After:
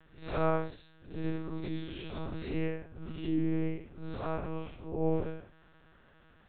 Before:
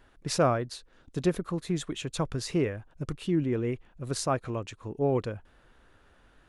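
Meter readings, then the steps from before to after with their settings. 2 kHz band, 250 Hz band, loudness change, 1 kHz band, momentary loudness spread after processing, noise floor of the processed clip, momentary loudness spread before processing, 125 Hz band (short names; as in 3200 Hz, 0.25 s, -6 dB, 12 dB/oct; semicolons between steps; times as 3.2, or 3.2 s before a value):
-4.5 dB, -4.0 dB, -5.0 dB, -5.5 dB, 12 LU, -61 dBFS, 13 LU, -6.0 dB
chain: time blur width 0.17 s; monotone LPC vocoder at 8 kHz 160 Hz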